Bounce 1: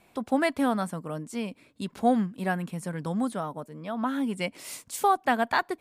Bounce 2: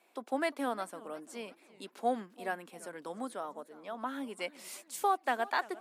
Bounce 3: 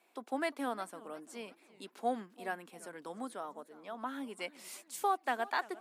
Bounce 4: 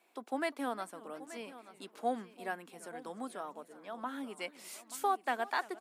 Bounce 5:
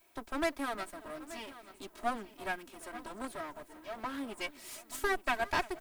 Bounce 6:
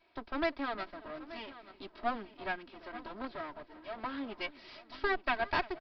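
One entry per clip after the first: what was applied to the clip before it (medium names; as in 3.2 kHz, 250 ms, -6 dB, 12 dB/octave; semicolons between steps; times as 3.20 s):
high-pass 300 Hz 24 dB/octave; modulated delay 346 ms, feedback 46%, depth 209 cents, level -20 dB; trim -6.5 dB
peaking EQ 560 Hz -3 dB 0.29 oct; trim -2 dB
delay 880 ms -15.5 dB
comb filter that takes the minimum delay 3.1 ms; added noise violet -73 dBFS; trim +3 dB
resampled via 11.025 kHz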